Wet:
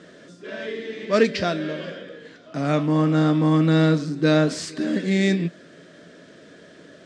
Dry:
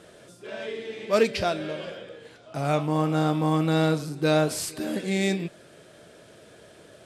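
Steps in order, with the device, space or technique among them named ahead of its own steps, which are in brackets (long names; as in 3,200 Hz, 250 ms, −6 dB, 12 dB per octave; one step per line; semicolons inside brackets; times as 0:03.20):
car door speaker (loudspeaker in its box 100–6,900 Hz, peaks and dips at 120 Hz −8 dB, 170 Hz +7 dB, 270 Hz +9 dB, 820 Hz −8 dB, 1,800 Hz +6 dB, 2,500 Hz −3 dB)
level +2.5 dB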